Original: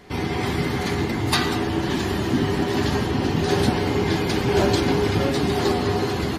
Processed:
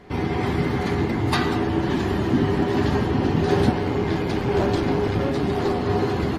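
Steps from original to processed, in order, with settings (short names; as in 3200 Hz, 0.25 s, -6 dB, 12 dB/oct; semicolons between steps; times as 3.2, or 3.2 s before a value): high shelf 3100 Hz -12 dB; 3.71–5.9 tube stage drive 14 dB, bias 0.5; gain +1.5 dB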